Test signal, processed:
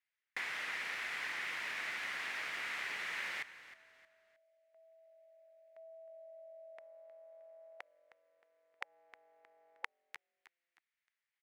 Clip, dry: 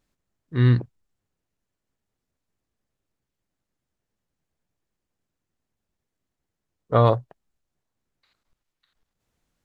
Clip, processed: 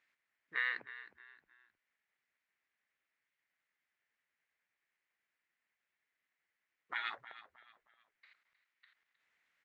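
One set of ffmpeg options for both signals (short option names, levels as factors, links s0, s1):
-filter_complex "[0:a]afftfilt=real='re*lt(hypot(re,im),0.141)':imag='im*lt(hypot(re,im),0.141)':win_size=1024:overlap=0.75,acompressor=threshold=0.0141:ratio=5,bandpass=f=2000:t=q:w=3.5:csg=0,asplit=4[s0][s1][s2][s3];[s1]adelay=312,afreqshift=-45,volume=0.178[s4];[s2]adelay=624,afreqshift=-90,volume=0.0603[s5];[s3]adelay=936,afreqshift=-135,volume=0.0207[s6];[s0][s4][s5][s6]amix=inputs=4:normalize=0,volume=3.35"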